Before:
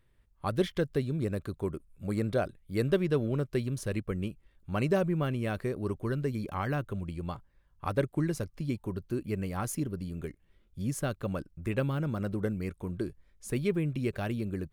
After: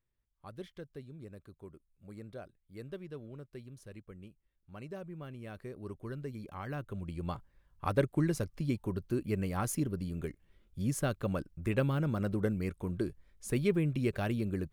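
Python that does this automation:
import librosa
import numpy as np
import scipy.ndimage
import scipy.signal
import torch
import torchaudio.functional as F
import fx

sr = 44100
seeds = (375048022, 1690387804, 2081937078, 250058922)

y = fx.gain(x, sr, db=fx.line((4.94, -17.0), (5.99, -9.5), (6.6, -9.5), (7.33, 0.0)))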